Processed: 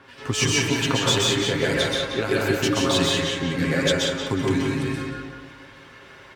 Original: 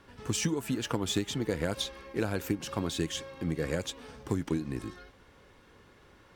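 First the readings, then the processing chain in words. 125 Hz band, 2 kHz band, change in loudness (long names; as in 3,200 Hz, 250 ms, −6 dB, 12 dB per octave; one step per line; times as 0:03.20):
+9.0 dB, +16.0 dB, +11.0 dB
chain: high-pass filter 60 Hz
parametric band 2,600 Hz +10 dB 2.9 octaves
comb filter 7.5 ms, depth 55%
in parallel at −3 dB: brickwall limiter −18 dBFS, peak gain reduction 8 dB
on the sum: two-band tremolo in antiphase 3.2 Hz, depth 70%, crossover 1,700 Hz
feedback echo with a low-pass in the loop 179 ms, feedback 45%, low-pass 4,700 Hz, level −5.5 dB
dense smooth reverb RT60 0.63 s, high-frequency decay 0.55×, pre-delay 115 ms, DRR −2.5 dB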